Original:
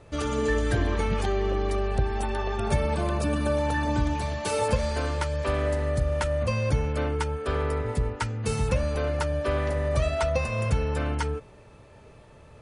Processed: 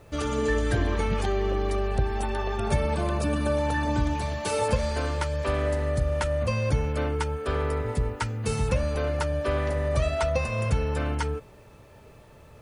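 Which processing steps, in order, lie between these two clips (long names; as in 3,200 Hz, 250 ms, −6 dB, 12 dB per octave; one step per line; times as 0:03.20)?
bit reduction 11 bits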